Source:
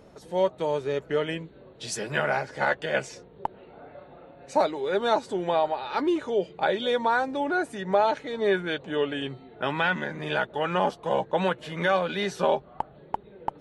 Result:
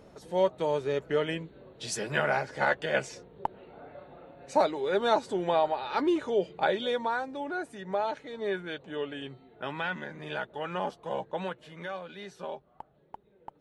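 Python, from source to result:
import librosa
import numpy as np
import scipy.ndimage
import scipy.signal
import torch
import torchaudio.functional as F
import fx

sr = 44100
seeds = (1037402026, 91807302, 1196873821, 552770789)

y = fx.gain(x, sr, db=fx.line((6.64, -1.5), (7.25, -8.0), (11.28, -8.0), (11.98, -15.0)))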